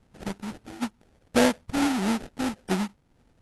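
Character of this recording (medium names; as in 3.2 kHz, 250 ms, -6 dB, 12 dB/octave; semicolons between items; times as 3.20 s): phasing stages 8, 1.6 Hz, lowest notch 460–1100 Hz; aliases and images of a low sample rate 1.1 kHz, jitter 20%; AC-3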